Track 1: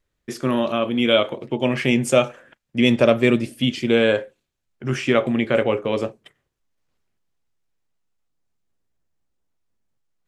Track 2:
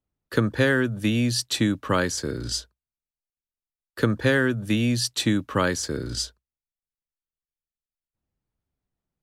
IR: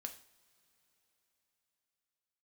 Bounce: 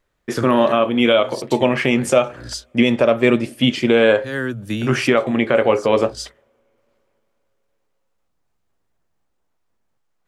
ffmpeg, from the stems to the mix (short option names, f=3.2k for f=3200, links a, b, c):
-filter_complex "[0:a]equalizer=f=900:t=o:w=2.5:g=8,volume=2dB,asplit=3[a][b][c];[b]volume=-18dB[d];[1:a]volume=-1dB[e];[c]apad=whole_len=406714[f];[e][f]sidechaincompress=threshold=-26dB:ratio=4:attack=7.4:release=154[g];[2:a]atrim=start_sample=2205[h];[d][h]afir=irnorm=-1:irlink=0[i];[a][g][i]amix=inputs=3:normalize=0,alimiter=limit=-3.5dB:level=0:latency=1:release=348"